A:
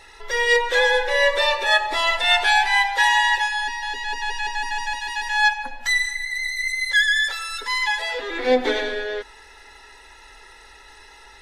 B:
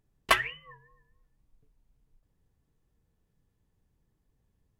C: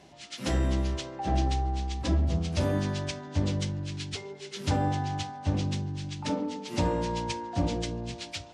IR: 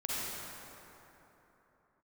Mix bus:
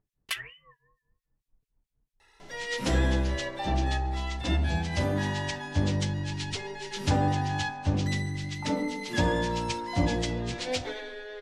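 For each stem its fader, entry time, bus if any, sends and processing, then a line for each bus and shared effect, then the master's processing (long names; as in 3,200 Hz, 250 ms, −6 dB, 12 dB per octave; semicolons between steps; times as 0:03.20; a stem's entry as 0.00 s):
−18.5 dB, 2.20 s, no send, no processing
−8.0 dB, 0.00 s, no send, two-band tremolo in antiphase 4.5 Hz, depth 100%, crossover 2,000 Hz
+0.5 dB, 2.40 s, no send, no processing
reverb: not used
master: speech leveller within 5 dB 2 s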